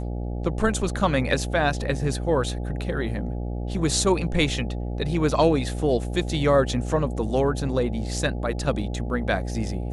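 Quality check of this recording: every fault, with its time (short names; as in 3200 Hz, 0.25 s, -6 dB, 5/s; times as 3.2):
buzz 60 Hz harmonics 14 -29 dBFS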